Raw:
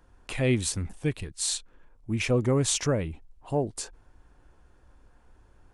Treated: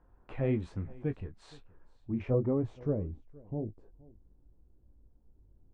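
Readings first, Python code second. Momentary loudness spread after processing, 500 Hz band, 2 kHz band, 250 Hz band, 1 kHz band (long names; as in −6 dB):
16 LU, −5.5 dB, −17.0 dB, −4.5 dB, −12.0 dB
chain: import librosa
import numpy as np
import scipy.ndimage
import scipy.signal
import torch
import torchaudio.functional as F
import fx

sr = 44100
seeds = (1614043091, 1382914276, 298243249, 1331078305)

y = fx.filter_sweep_lowpass(x, sr, from_hz=1200.0, to_hz=320.0, start_s=1.87, end_s=3.46, q=0.75)
y = fx.chorus_voices(y, sr, voices=2, hz=1.1, base_ms=20, depth_ms=3.0, mix_pct=30)
y = y + 10.0 ** (-23.0 / 20.0) * np.pad(y, (int(470 * sr / 1000.0), 0))[:len(y)]
y = F.gain(torch.from_numpy(y), -2.0).numpy()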